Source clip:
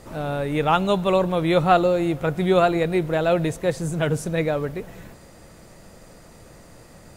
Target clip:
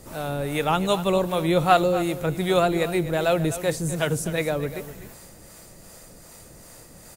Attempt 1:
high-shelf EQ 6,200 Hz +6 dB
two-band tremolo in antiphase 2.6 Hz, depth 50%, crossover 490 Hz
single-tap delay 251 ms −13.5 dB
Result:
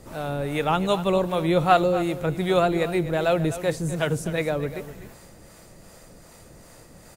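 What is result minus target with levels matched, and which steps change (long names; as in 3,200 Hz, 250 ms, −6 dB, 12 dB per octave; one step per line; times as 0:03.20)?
8,000 Hz band −5.5 dB
change: high-shelf EQ 6,200 Hz +15 dB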